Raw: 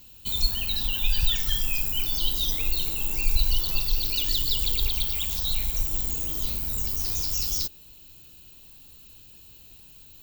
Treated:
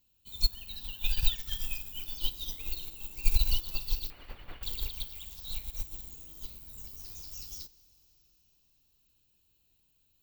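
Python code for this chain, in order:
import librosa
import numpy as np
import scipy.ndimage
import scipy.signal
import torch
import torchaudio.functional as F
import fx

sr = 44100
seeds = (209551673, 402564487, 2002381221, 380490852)

y = fx.delta_mod(x, sr, bps=16000, step_db=-30.0, at=(4.1, 4.63))
y = fx.rev_plate(y, sr, seeds[0], rt60_s=4.3, hf_ratio=0.95, predelay_ms=0, drr_db=11.5)
y = fx.upward_expand(y, sr, threshold_db=-30.0, expansion=2.5)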